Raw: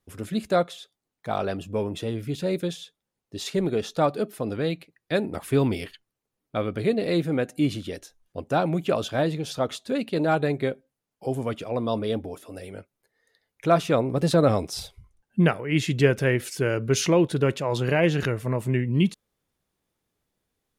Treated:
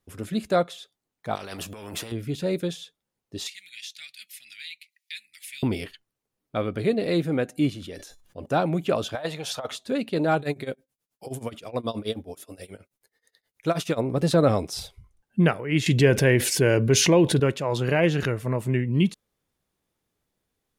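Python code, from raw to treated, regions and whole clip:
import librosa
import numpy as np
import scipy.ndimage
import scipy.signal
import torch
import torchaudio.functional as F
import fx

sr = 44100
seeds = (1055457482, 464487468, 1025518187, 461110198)

y = fx.chain(x, sr, fx.over_compress(threshold_db=-34.0, ratio=-1.0),
    fx.spectral_comp(ratio=2.0), at=(1.35, 2.12))
y = fx.chain(y, sr, fx.ellip_highpass(hz=2100.0, order=4, stop_db=50),
    fx.band_squash(depth_pct=70), at=(3.47, 5.63))
y = fx.chain(y, sr, fx.comb_fb(f0_hz=580.0, decay_s=0.3, harmonics='all', damping=0.0, mix_pct=50),
    fx.sustainer(db_per_s=61.0), at=(7.7, 8.46))
y = fx.chain(y, sr, fx.low_shelf_res(hz=480.0, db=-11.0, q=1.5),
    fx.notch(hz=4800.0, q=30.0),
    fx.over_compress(threshold_db=-28.0, ratio=-0.5), at=(9.15, 9.72))
y = fx.chain(y, sr, fx.high_shelf(hz=3000.0, db=9.0),
    fx.tremolo(hz=9.4, depth=0.92), at=(10.39, 14.01))
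y = fx.chain(y, sr, fx.notch(hz=1300.0, q=5.1),
    fx.env_flatten(amount_pct=50), at=(15.86, 17.4))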